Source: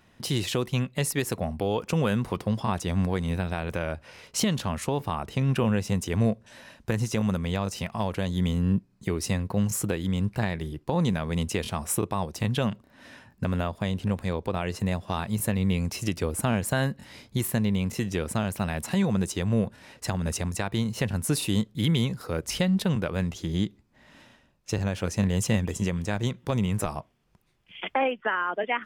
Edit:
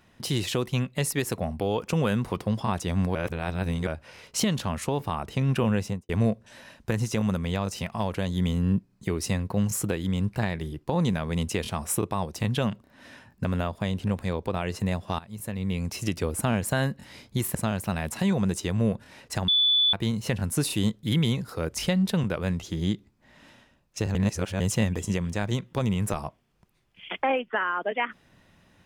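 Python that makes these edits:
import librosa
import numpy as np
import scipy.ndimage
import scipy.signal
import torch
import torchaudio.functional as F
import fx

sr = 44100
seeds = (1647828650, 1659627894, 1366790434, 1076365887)

y = fx.studio_fade_out(x, sr, start_s=5.81, length_s=0.28)
y = fx.edit(y, sr, fx.reverse_span(start_s=3.15, length_s=0.72),
    fx.fade_in_from(start_s=15.19, length_s=0.86, floor_db=-18.0),
    fx.cut(start_s=17.55, length_s=0.72),
    fx.bleep(start_s=20.2, length_s=0.45, hz=3470.0, db=-18.0),
    fx.reverse_span(start_s=24.87, length_s=0.45), tone=tone)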